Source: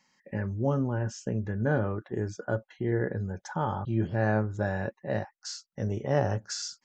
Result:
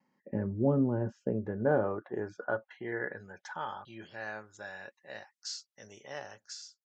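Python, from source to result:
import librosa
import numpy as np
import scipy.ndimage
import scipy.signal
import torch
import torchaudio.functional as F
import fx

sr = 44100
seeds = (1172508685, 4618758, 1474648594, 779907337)

y = fx.fade_out_tail(x, sr, length_s=0.73)
y = fx.dynamic_eq(y, sr, hz=6300.0, q=1.3, threshold_db=-55.0, ratio=4.0, max_db=-5)
y = fx.filter_sweep_bandpass(y, sr, from_hz=310.0, to_hz=5500.0, start_s=0.93, end_s=4.33, q=0.85)
y = fx.vibrato(y, sr, rate_hz=0.36, depth_cents=7.9)
y = y * librosa.db_to_amplitude(3.0)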